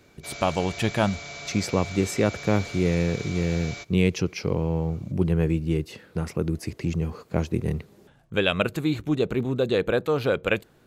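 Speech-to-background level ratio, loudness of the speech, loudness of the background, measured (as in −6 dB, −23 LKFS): 11.0 dB, −26.0 LKFS, −37.0 LKFS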